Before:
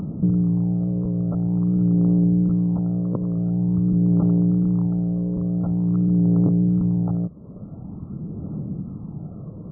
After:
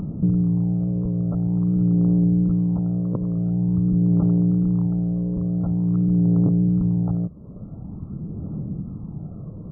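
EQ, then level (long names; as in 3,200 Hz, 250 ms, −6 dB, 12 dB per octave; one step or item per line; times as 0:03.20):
low-shelf EQ 82 Hz +9.5 dB
−2.0 dB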